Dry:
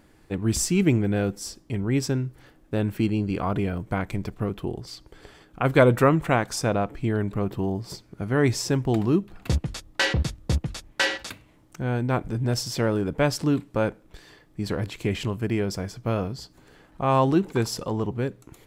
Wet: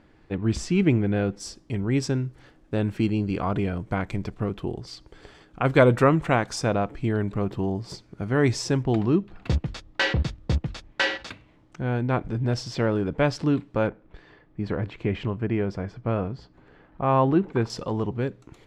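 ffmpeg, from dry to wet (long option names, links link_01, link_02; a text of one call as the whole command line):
ffmpeg -i in.wav -af "asetnsamples=nb_out_samples=441:pad=0,asendcmd='1.4 lowpass f 7200;8.83 lowpass f 4300;13.87 lowpass f 2300;17.7 lowpass f 5100',lowpass=3800" out.wav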